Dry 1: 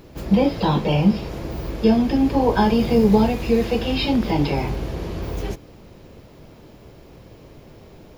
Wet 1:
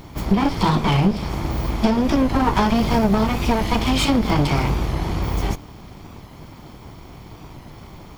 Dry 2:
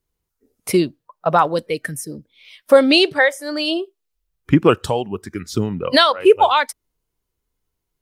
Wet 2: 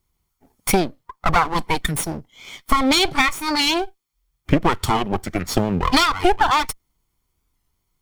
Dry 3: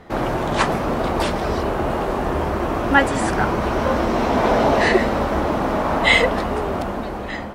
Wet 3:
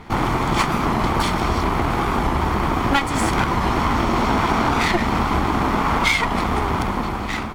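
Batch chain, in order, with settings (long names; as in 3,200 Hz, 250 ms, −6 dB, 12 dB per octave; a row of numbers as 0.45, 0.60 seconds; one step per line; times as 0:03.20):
lower of the sound and its delayed copy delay 0.9 ms
downward compressor 6 to 1, threshold −20 dBFS
wow of a warped record 45 rpm, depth 100 cents
loudness normalisation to −20 LKFS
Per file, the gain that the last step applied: +6.0, +7.0, +5.0 decibels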